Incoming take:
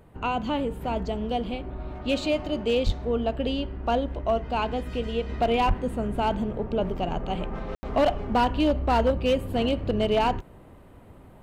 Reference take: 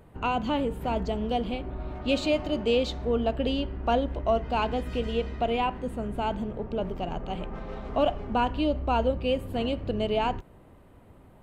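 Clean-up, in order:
clipped peaks rebuilt −16 dBFS
0:02.85–0:02.97: high-pass filter 140 Hz 24 dB per octave
0:05.67–0:05.79: high-pass filter 140 Hz 24 dB per octave
ambience match 0:07.75–0:07.83
0:05.29: level correction −4 dB

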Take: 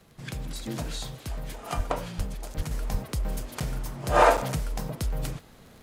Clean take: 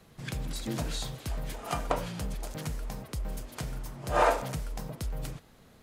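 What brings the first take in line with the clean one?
click removal
high-pass at the plosives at 0:01.76/0:02.17/0:02.56/0:02.91
repair the gap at 0:03.60/0:04.37, 6.5 ms
level correction −5.5 dB, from 0:02.71

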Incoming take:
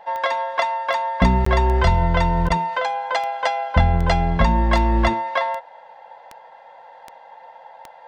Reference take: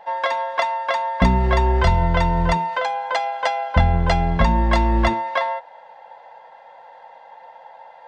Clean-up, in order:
click removal
repair the gap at 0:01.45, 14 ms
repair the gap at 0:02.49, 11 ms

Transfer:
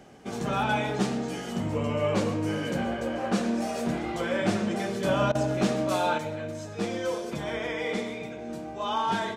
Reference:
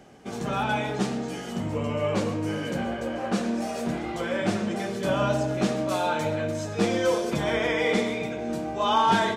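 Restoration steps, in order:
clipped peaks rebuilt −16 dBFS
repair the gap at 0:05.32, 29 ms
level 0 dB, from 0:06.18 +6.5 dB

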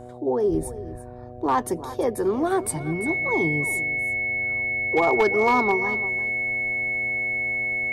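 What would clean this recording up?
clipped peaks rebuilt −12.5 dBFS
hum removal 122.9 Hz, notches 6
notch filter 2,200 Hz, Q 30
echo removal 343 ms −15 dB

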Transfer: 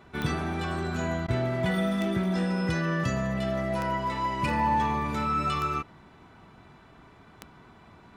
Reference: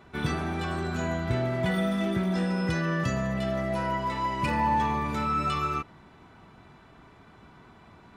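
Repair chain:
click removal
repair the gap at 0:01.27, 12 ms

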